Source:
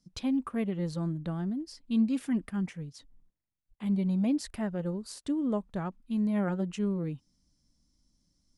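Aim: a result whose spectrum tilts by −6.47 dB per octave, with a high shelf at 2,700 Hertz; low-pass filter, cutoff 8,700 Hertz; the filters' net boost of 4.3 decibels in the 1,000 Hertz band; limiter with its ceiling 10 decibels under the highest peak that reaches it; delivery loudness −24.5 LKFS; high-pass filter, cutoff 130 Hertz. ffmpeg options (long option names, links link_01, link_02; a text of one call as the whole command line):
ffmpeg -i in.wav -af "highpass=130,lowpass=8700,equalizer=frequency=1000:width_type=o:gain=5,highshelf=frequency=2700:gain=4,volume=11dB,alimiter=limit=-16.5dB:level=0:latency=1" out.wav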